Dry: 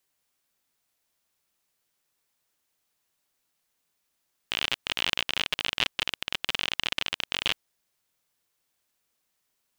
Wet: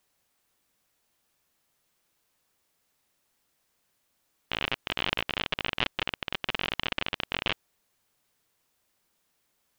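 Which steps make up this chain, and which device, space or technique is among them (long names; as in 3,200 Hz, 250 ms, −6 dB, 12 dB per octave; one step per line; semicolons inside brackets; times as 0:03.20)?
cassette deck with a dirty head (head-to-tape spacing loss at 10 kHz 30 dB; tape wow and flutter; white noise bed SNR 37 dB)
level +5.5 dB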